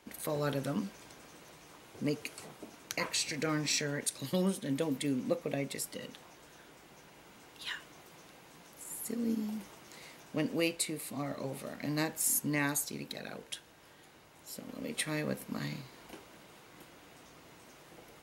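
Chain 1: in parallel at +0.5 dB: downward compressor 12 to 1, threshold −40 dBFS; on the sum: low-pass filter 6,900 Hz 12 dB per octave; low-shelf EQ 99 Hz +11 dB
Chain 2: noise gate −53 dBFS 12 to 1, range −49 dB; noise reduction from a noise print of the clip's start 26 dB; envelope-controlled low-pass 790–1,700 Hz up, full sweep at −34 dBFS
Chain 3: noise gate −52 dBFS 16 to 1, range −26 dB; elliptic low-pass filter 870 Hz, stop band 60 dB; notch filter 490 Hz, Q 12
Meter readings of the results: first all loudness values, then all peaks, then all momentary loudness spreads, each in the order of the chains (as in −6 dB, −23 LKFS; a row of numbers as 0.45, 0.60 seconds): −33.0, −35.5, −38.5 LKFS; −14.5, −16.0, −20.0 dBFS; 19, 14, 18 LU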